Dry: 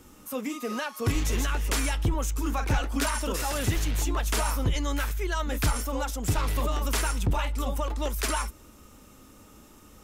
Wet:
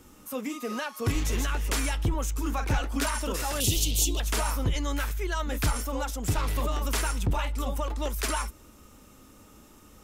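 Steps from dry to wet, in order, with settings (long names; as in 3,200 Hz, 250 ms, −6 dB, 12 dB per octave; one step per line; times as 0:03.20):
0:03.60–0:04.20: drawn EQ curve 500 Hz 0 dB, 1,700 Hz −22 dB, 3,000 Hz +10 dB
level −1 dB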